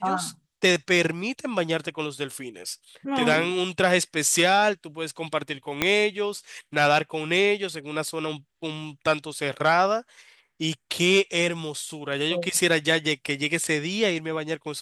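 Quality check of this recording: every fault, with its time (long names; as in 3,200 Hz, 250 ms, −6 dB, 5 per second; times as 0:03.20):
0:05.82: click −6 dBFS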